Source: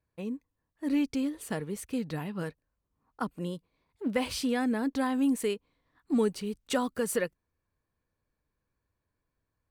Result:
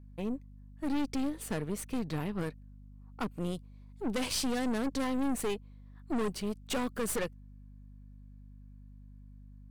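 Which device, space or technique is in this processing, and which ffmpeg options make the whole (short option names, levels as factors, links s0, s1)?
valve amplifier with mains hum: -filter_complex "[0:a]aeval=exprs='(tanh(44.7*val(0)+0.65)-tanh(0.65))/44.7':c=same,aeval=exprs='val(0)+0.002*(sin(2*PI*50*n/s)+sin(2*PI*2*50*n/s)/2+sin(2*PI*3*50*n/s)/3+sin(2*PI*4*50*n/s)/4+sin(2*PI*5*50*n/s)/5)':c=same,asettb=1/sr,asplit=3[s0][s1][s2];[s0]atrim=end=3.404[s3];[s1]atrim=start=3.4:end=5.04,asetpts=PTS-STARTPTS,afade=t=in:d=0.004:c=qsin,afade=t=out:st=1.636:d=0.004:c=qsin,equalizer=f=7500:w=0.7:g=5[s4];[s2]atrim=start=5.036[s5];[s3][s4]acrossfade=d=0.004:c1=hsin:c2=qsin[s6];[s6][s5]acrossfade=d=0.004:c1=qsin:c2=hsin,volume=1.58"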